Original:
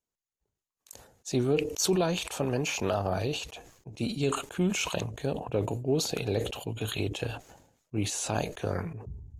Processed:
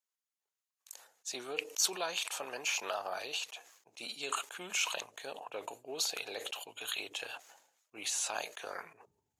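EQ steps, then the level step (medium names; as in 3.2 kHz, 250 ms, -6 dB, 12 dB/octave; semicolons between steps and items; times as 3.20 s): high-pass 960 Hz 12 dB/octave; -1.0 dB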